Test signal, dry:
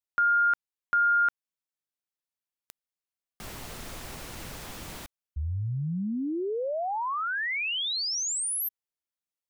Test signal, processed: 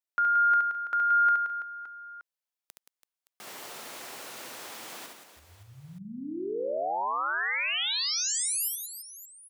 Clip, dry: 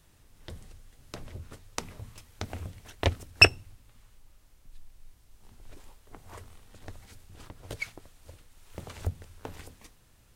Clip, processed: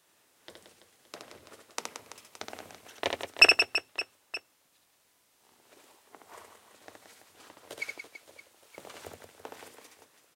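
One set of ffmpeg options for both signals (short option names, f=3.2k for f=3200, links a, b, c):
-af "highpass=390,aecho=1:1:70|175|332.5|568.8|923.1:0.631|0.398|0.251|0.158|0.1,volume=-1.5dB"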